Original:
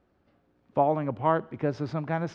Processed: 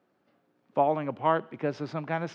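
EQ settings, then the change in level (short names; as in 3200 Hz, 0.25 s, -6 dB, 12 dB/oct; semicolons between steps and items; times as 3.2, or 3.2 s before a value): HPF 130 Hz 24 dB/oct; dynamic EQ 2800 Hz, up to +6 dB, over -51 dBFS, Q 1.7; low shelf 280 Hz -5 dB; 0.0 dB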